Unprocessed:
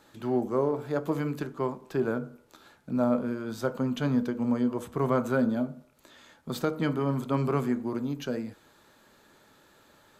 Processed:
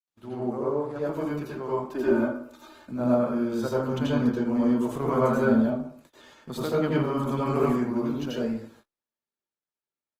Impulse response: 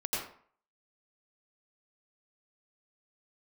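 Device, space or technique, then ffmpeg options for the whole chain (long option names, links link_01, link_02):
speakerphone in a meeting room: -filter_complex "[0:a]asplit=3[link_01][link_02][link_03];[link_01]afade=type=out:start_time=1.9:duration=0.02[link_04];[link_02]aecho=1:1:3.3:0.99,afade=type=in:start_time=1.9:duration=0.02,afade=type=out:start_time=2.9:duration=0.02[link_05];[link_03]afade=type=in:start_time=2.9:duration=0.02[link_06];[link_04][link_05][link_06]amix=inputs=3:normalize=0[link_07];[1:a]atrim=start_sample=2205[link_08];[link_07][link_08]afir=irnorm=-1:irlink=0,dynaudnorm=framelen=230:gausssize=17:maxgain=7dB,agate=range=-39dB:threshold=-45dB:ratio=16:detection=peak,volume=-7dB" -ar 48000 -c:a libopus -b:a 20k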